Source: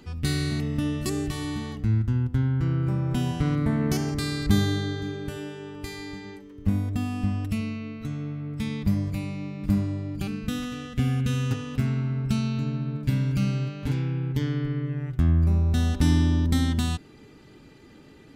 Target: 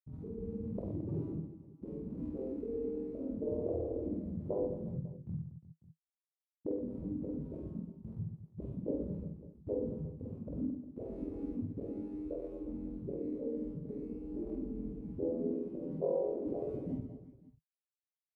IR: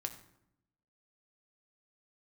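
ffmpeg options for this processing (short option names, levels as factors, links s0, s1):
-filter_complex "[0:a]bandreject=f=60:t=h:w=6,bandreject=f=120:t=h:w=6,bandreject=f=180:t=h:w=6,bandreject=f=240:t=h:w=6,bandreject=f=300:t=h:w=6,bandreject=f=360:t=h:w=6,bandreject=f=420:t=h:w=6,afftfilt=real='re*gte(hypot(re,im),0.316)':imag='im*gte(hypot(re,im),0.316)':win_size=1024:overlap=0.75,equalizer=f=160:t=o:w=0.33:g=8,equalizer=f=800:t=o:w=0.33:g=4,equalizer=f=1600:t=o:w=0.33:g=-5,equalizer=f=2500:t=o:w=0.33:g=4,equalizer=f=10000:t=o:w=0.33:g=10,acontrast=80,flanger=delay=17:depth=6.8:speed=0.11,asplit=2[s0][s1];[s1]acompressor=threshold=0.0178:ratio=10,volume=1.26[s2];[s0][s2]amix=inputs=2:normalize=0,bandreject=f=740:w=12,asplit=2[s3][s4];[s4]adelay=46,volume=0.562[s5];[s3][s5]amix=inputs=2:normalize=0,afftfilt=real='re*lt(hypot(re,im),0.1)':imag='im*lt(hypot(re,im),0.1)':win_size=1024:overlap=0.75,highpass=74,equalizer=f=2400:w=0.66:g=-4.5,aecho=1:1:50|120|218|355.2|547.3:0.631|0.398|0.251|0.158|0.1,volume=3.16"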